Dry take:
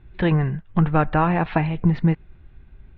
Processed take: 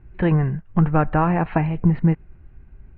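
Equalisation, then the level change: air absorption 420 m; notch 3500 Hz, Q 6.4; +1.5 dB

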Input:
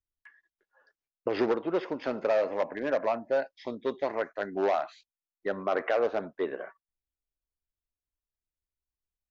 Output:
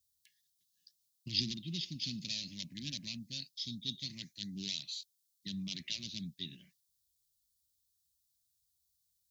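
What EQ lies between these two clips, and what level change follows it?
HPF 76 Hz; elliptic band-stop 170–3800 Hz, stop band 50 dB; high shelf 2600 Hz +11 dB; +7.5 dB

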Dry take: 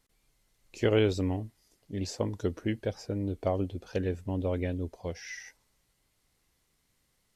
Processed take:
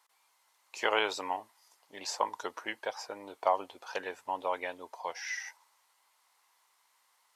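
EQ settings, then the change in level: resonant high-pass 940 Hz, resonance Q 4.1; +3.0 dB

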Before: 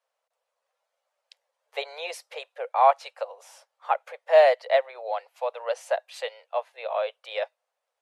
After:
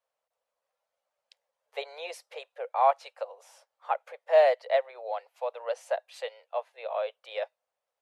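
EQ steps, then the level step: low shelf 440 Hz +7 dB; -6.0 dB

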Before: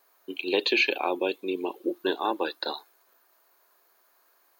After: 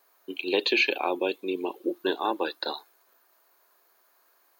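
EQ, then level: HPF 54 Hz; 0.0 dB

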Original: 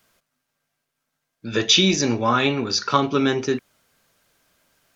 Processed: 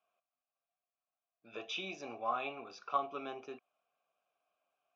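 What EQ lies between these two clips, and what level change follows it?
vowel filter a; notch 4400 Hz, Q 6.5; -6.0 dB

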